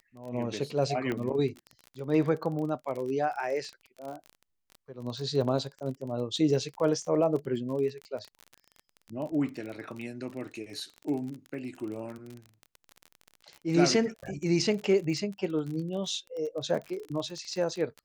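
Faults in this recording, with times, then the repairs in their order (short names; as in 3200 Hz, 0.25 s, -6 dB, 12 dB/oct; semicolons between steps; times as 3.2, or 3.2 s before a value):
crackle 28/s -35 dBFS
1.12 pop -20 dBFS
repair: de-click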